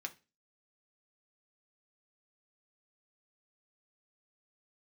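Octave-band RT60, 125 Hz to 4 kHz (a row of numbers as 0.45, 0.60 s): 0.35, 0.35, 0.30, 0.25, 0.30, 0.30 s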